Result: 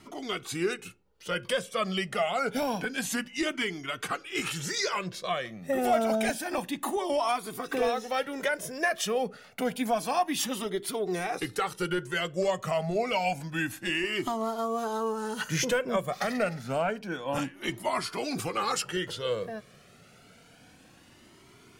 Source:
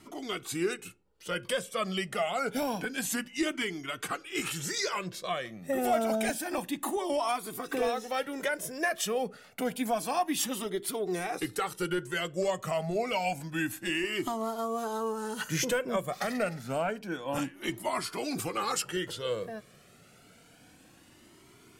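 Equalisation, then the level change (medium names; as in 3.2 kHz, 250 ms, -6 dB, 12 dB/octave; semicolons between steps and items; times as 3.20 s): graphic EQ with 31 bands 315 Hz -4 dB, 8 kHz -5 dB, 12.5 kHz -8 dB; +2.5 dB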